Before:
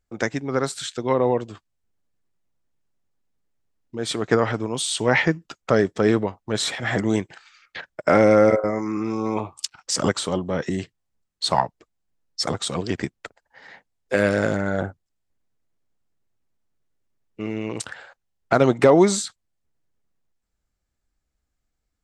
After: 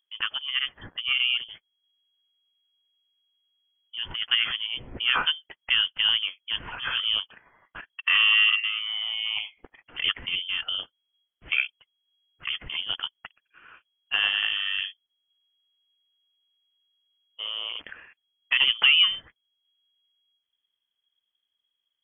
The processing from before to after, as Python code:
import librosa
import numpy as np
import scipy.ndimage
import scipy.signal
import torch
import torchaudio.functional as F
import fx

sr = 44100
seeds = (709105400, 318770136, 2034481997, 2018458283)

y = fx.freq_invert(x, sr, carrier_hz=3300)
y = y * librosa.db_to_amplitude(-5.0)